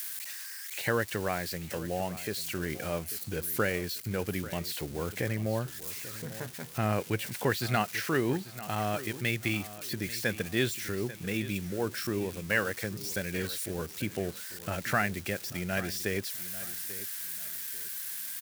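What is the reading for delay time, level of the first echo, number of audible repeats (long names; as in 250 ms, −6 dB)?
841 ms, −15.5 dB, 2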